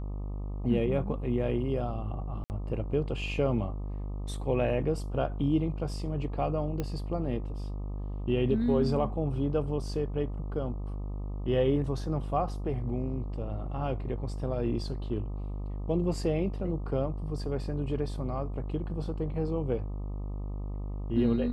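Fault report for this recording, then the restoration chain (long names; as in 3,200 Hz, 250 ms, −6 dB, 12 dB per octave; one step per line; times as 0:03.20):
mains buzz 50 Hz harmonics 25 −35 dBFS
0:02.44–0:02.50: drop-out 59 ms
0:06.80: click −19 dBFS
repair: click removal
hum removal 50 Hz, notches 25
repair the gap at 0:02.44, 59 ms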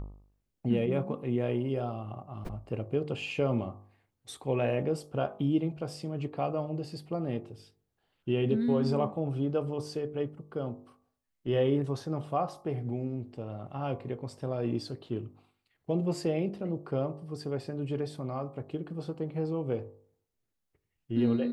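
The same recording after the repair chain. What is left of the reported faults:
none of them is left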